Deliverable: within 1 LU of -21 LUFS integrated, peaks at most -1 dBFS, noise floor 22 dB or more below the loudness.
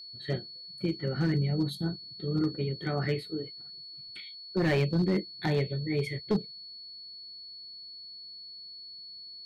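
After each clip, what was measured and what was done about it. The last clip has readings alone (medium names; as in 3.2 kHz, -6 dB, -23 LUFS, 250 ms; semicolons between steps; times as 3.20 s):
clipped samples 0.5%; clipping level -20.5 dBFS; steady tone 4.4 kHz; tone level -43 dBFS; loudness -33.0 LUFS; peak level -20.5 dBFS; loudness target -21.0 LUFS
-> clip repair -20.5 dBFS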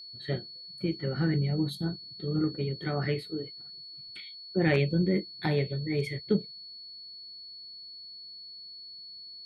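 clipped samples 0.0%; steady tone 4.4 kHz; tone level -43 dBFS
-> band-stop 4.4 kHz, Q 30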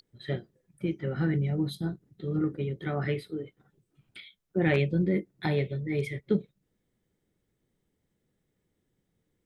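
steady tone not found; loudness -30.5 LUFS; peak level -11.5 dBFS; loudness target -21.0 LUFS
-> trim +9.5 dB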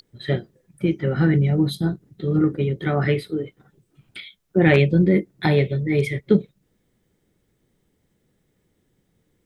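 loudness -21.0 LUFS; peak level -2.0 dBFS; noise floor -69 dBFS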